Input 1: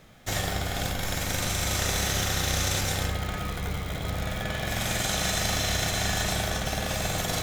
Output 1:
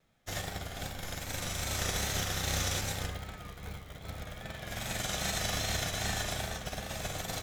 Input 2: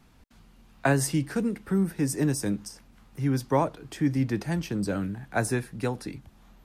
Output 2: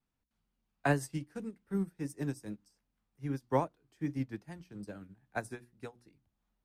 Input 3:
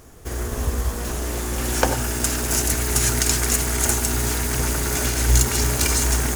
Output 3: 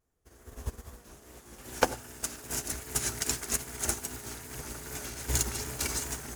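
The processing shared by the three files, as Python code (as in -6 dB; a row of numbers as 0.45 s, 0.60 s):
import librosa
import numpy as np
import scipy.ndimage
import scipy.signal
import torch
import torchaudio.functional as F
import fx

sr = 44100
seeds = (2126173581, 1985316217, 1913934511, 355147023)

y = fx.vibrato(x, sr, rate_hz=2.5, depth_cents=61.0)
y = fx.hum_notches(y, sr, base_hz=60, count=6)
y = fx.upward_expand(y, sr, threshold_db=-35.0, expansion=2.5)
y = y * 10.0 ** (-4.0 / 20.0)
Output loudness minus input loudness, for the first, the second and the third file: -7.0 LU, -9.5 LU, -12.0 LU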